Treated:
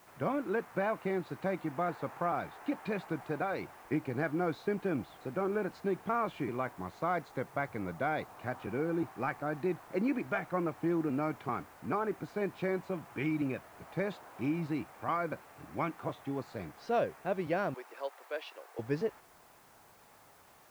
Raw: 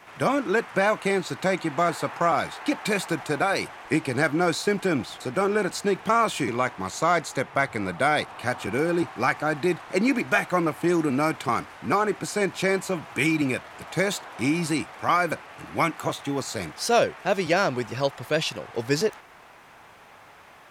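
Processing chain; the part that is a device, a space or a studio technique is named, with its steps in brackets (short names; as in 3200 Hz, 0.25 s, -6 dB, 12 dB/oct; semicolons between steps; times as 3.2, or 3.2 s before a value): cassette deck with a dirty head (tape spacing loss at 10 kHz 37 dB; wow and flutter; white noise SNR 30 dB); 17.74–18.79 Bessel high-pass 620 Hz, order 8; gain -7.5 dB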